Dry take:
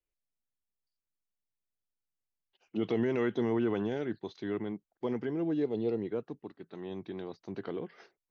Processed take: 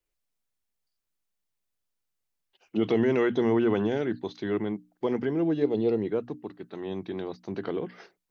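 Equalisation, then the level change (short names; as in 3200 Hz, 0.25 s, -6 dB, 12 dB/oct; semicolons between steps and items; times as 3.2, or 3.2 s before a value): notches 60/120/180/240/300 Hz; +6.5 dB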